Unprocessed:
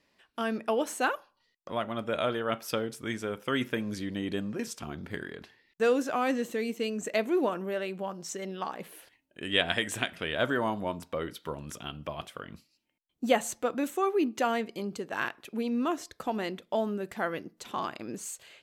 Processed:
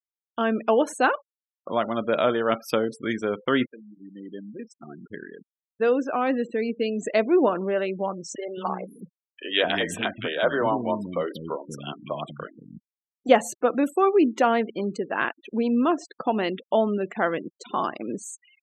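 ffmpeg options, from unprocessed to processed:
-filter_complex "[0:a]asettb=1/sr,asplit=3[a][b][c];[a]atrim=end=8.354[d];[b]atrim=start=8.35:end=13.29,asetpts=PTS-STARTPTS,afade=t=in:d=0.004:c=qsin,afade=t=out:st=4.936:d=0.004:c=qsin,acrossover=split=300|1700[e][f][g];[f]adelay=30[h];[e]adelay=220[i];[i][h][g]amix=inputs=3:normalize=0,atrim=end_sample=217854[j];[c]atrim=start=13.286[k];[d][j]acrossfade=d=0.004:c1=hsin:c2=qsin[l];[l][k]acrossfade=d=0.004:c1=qsin:c2=hsin,asettb=1/sr,asplit=3[m][n][o];[m]atrim=end=16.224[p];[n]atrim=start=16.22:end=17.35,asetpts=PTS-STARTPTS,afade=t=in:d=0.004:c=qsin,afade=t=out:st=1.126:d=0.004:c=qsin,adynamicequalizer=threshold=0.00141:dfrequency=2800:dqfactor=2.4:tfrequency=2800:tqfactor=2.4:attack=5:release=100:ratio=0.375:range=2.5:mode=boostabove:tftype=bell[q];[o]atrim=start=17.346[r];[p][q]acrossfade=d=0.004:c1=hsin:c2=qsin[s];[s][r]acrossfade=d=0.004:c1=qsin:c2=hsin,asplit=2[t][u];[t]atrim=end=3.66,asetpts=PTS-STARTPTS,afade=t=out:st=3.656:d=0.004:c=hsin:silence=0.0749894[v];[u]atrim=start=3.66,asetpts=PTS-STARTPTS,afade=t=in:d=3.95:silence=0.0749894[w];[v][w]concat=n=2:v=0:a=1,highpass=170,afftfilt=real='re*gte(hypot(re,im),0.00891)':imag='im*gte(hypot(re,im),0.00891)':win_size=1024:overlap=0.75,highshelf=f=2.2k:g=-7.5,volume=8.5dB"

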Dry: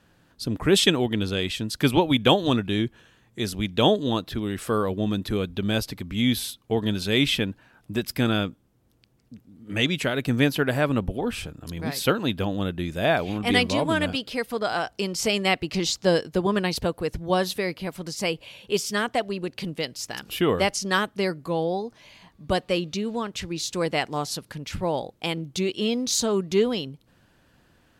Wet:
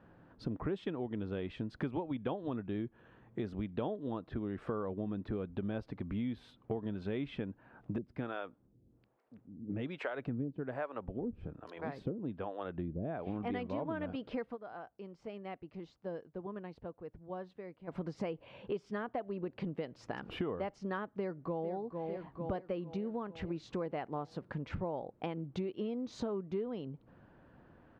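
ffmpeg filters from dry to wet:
-filter_complex "[0:a]asettb=1/sr,asplit=3[a][b][c];[a]atrim=end=7.984[d];[b]atrim=start=7.98:end=13.27,asetpts=PTS-STARTPTS,afade=t=in:d=0.004:c=qsin,afade=t=out:st=5.286:d=0.004:c=qsin,acrossover=split=460[e][f];[e]aeval=exprs='val(0)*(1-1/2+1/2*cos(2*PI*1.2*n/s))':c=same[g];[f]aeval=exprs='val(0)*(1-1/2-1/2*cos(2*PI*1.2*n/s))':c=same[h];[g][h]amix=inputs=2:normalize=0[i];[c]atrim=start=13.266[j];[d][i]acrossfade=d=0.004:c1=hsin:c2=qsin[k];[k][j]acrossfade=d=0.004:c1=qsin:c2=hsin,asplit=2[l][m];[m]afade=t=in:st=21.13:d=0.01,afade=t=out:st=21.71:d=0.01,aecho=0:1:450|900|1350|1800|2250|2700|3150:0.281838|0.169103|0.101462|0.0608771|0.0365262|0.0219157|0.0131494[n];[l][n]amix=inputs=2:normalize=0,asplit=3[o][p][q];[o]atrim=end=14.57,asetpts=PTS-STARTPTS,afade=t=out:st=14.45:d=0.12:c=qsin:silence=0.0891251[r];[p]atrim=start=14.57:end=17.87,asetpts=PTS-STARTPTS,volume=-21dB[s];[q]atrim=start=17.87,asetpts=PTS-STARTPTS,afade=t=in:d=0.12:c=qsin:silence=0.0891251[t];[r][s][t]concat=n=3:v=0:a=1,lowpass=1.2k,lowshelf=f=98:g=-6.5,acompressor=threshold=-38dB:ratio=6,volume=2.5dB"

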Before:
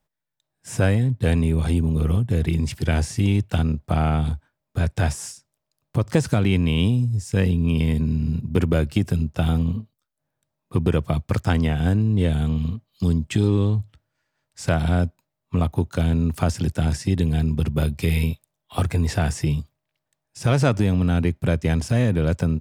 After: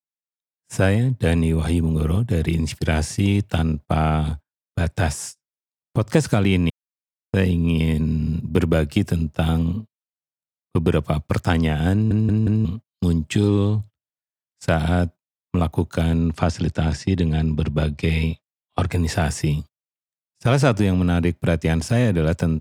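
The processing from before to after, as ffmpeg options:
-filter_complex "[0:a]asettb=1/sr,asplit=3[a][b][c];[a]atrim=end=16.194[d];[b]atrim=start=16.19:end=18.92,asetpts=PTS-STARTPTS,afade=t=in:d=0.004:c=qsin,afade=t=out:st=2.726:d=0.004:c=qsin,lowpass=5.7k[e];[c]atrim=start=18.916[f];[d][e]acrossfade=d=0.004:c1=hsin:c2=qsin[g];[g][f]acrossfade=d=0.004:c1=qsin:c2=hsin,asplit=7[h][i][j][k][l][m][n];[h]atrim=end=6.7,asetpts=PTS-STARTPTS,afade=t=out:st=6.696:d=0.004:c=hsin[o];[i]atrim=start=6.7:end=7.33,asetpts=PTS-STARTPTS,volume=0[p];[j]atrim=start=7.33:end=12.112,asetpts=PTS-STARTPTS,afade=t=in:d=0.004:c=hsin[q];[k]atrim=start=11.928:end=12.112[r];[l]atrim=start=11.928:end=12.112[s];[m]atrim=start=11.928:end=12.112[t];[n]atrim=start=12.648[u];[o][p][q]concat=n=3:v=0:a=1[v];[v][r]acrossfade=d=0.004:c1=hsin:c2=hsin[w];[w][s]acrossfade=d=0.004:c1=hsin:c2=hsin[x];[x][t]acrossfade=d=0.004:c1=hsin:c2=hsin[y];[y][u]acrossfade=d=0.004:c1=hsin:c2=hsin,highpass=f=110:p=1,agate=range=-32dB:threshold=-34dB:ratio=16:detection=peak,volume=3dB"

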